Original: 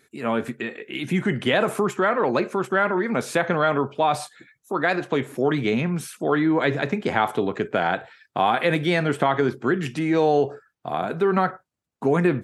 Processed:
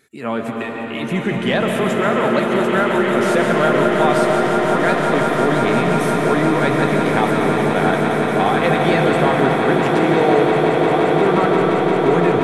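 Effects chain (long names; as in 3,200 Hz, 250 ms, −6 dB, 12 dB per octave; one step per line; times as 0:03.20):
in parallel at −8 dB: soft clipping −14.5 dBFS, distortion −15 dB
on the sum: echo that builds up and dies away 175 ms, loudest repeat 8, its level −10.5 dB
convolution reverb RT60 4.7 s, pre-delay 90 ms, DRR 1 dB
level −1.5 dB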